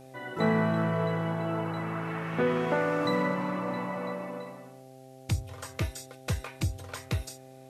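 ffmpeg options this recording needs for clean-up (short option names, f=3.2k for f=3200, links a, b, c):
-af "bandreject=f=131.1:t=h:w=4,bandreject=f=262.2:t=h:w=4,bandreject=f=393.3:t=h:w=4,bandreject=f=524.4:t=h:w=4,bandreject=f=655.5:t=h:w=4,bandreject=f=786.6:t=h:w=4,agate=range=-21dB:threshold=-41dB"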